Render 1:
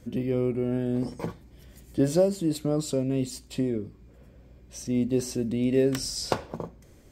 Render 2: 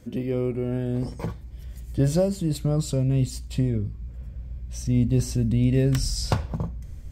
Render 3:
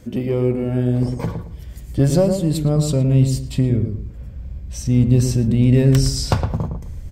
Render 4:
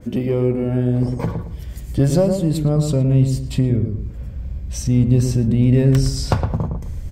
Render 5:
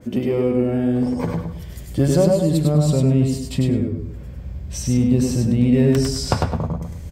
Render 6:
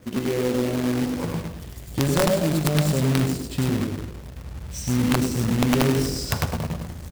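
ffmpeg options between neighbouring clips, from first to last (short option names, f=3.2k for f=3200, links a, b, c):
-af "asubboost=boost=11:cutoff=110,volume=1dB"
-filter_complex "[0:a]asplit=2[a][b];[b]aeval=exprs='clip(val(0),-1,0.0668)':c=same,volume=-8dB[c];[a][c]amix=inputs=2:normalize=0,asplit=2[d][e];[e]adelay=112,lowpass=f=1.1k:p=1,volume=-5.5dB,asplit=2[f][g];[g]adelay=112,lowpass=f=1.1k:p=1,volume=0.32,asplit=2[h][i];[i]adelay=112,lowpass=f=1.1k:p=1,volume=0.32,asplit=2[j][k];[k]adelay=112,lowpass=f=1.1k:p=1,volume=0.32[l];[d][f][h][j][l]amix=inputs=5:normalize=0,volume=3dB"
-filter_complex "[0:a]asplit=2[a][b];[b]acompressor=threshold=-24dB:ratio=6,volume=-1dB[c];[a][c]amix=inputs=2:normalize=0,adynamicequalizer=threshold=0.01:dfrequency=2400:dqfactor=0.7:tfrequency=2400:tqfactor=0.7:attack=5:release=100:ratio=0.375:range=2.5:mode=cutabove:tftype=highshelf,volume=-2dB"
-filter_complex "[0:a]highpass=f=130:p=1,asplit=2[a][b];[b]aecho=0:1:100|200|300:0.668|0.114|0.0193[c];[a][c]amix=inputs=2:normalize=0"
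-filter_complex "[0:a]aeval=exprs='(mod(2.11*val(0)+1,2)-1)/2.11':c=same,asplit=6[a][b][c][d][e][f];[b]adelay=101,afreqshift=50,volume=-14.5dB[g];[c]adelay=202,afreqshift=100,volume=-20.7dB[h];[d]adelay=303,afreqshift=150,volume=-26.9dB[i];[e]adelay=404,afreqshift=200,volume=-33.1dB[j];[f]adelay=505,afreqshift=250,volume=-39.3dB[k];[a][g][h][i][j][k]amix=inputs=6:normalize=0,acrusher=bits=2:mode=log:mix=0:aa=0.000001,volume=-5dB"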